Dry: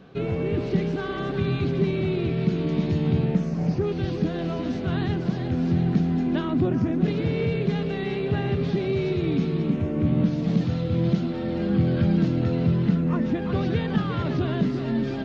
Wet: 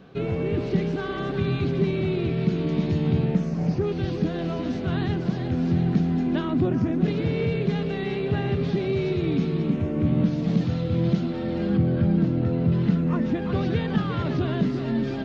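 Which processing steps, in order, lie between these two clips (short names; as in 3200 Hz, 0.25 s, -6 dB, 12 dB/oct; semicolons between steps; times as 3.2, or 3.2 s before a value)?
11.77–12.72 high shelf 2300 Hz -11 dB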